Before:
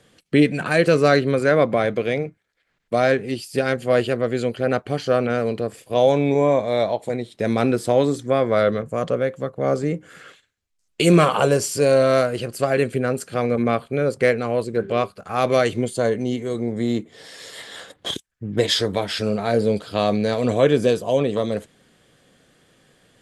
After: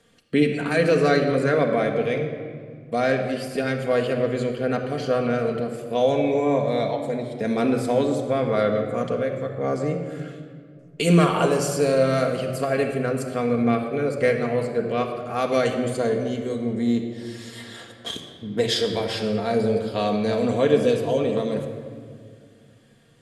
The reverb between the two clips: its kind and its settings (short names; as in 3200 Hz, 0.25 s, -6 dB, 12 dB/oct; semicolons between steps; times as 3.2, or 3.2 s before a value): shoebox room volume 3600 m³, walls mixed, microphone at 1.7 m; gain -5 dB